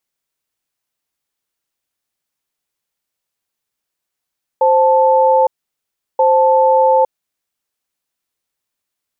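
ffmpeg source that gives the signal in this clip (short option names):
-f lavfi -i "aevalsrc='0.282*(sin(2*PI*524*t)+sin(2*PI*878*t))*clip(min(mod(t,1.58),0.86-mod(t,1.58))/0.005,0,1)':d=3.16:s=44100"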